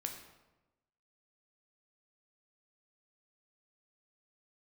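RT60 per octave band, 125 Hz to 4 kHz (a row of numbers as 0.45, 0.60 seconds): 1.2, 1.2, 1.1, 1.0, 0.85, 0.70 seconds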